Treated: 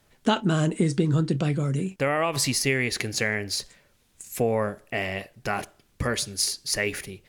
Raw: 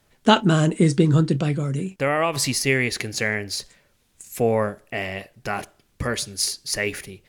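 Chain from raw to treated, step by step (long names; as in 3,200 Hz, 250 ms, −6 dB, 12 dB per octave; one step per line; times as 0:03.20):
downward compressor 2.5 to 1, threshold −21 dBFS, peak gain reduction 8.5 dB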